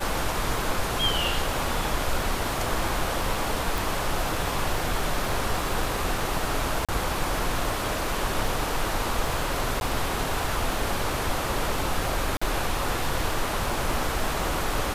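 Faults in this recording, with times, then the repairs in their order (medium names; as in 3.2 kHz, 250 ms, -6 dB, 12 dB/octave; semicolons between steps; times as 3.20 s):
crackle 55 per s -33 dBFS
3.78 s: pop
6.85–6.89 s: dropout 36 ms
9.80–9.81 s: dropout 11 ms
12.37–12.41 s: dropout 45 ms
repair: de-click; interpolate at 6.85 s, 36 ms; interpolate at 9.80 s, 11 ms; interpolate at 12.37 s, 45 ms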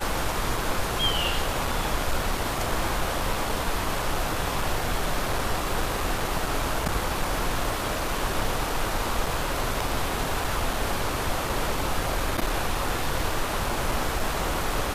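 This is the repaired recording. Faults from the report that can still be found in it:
nothing left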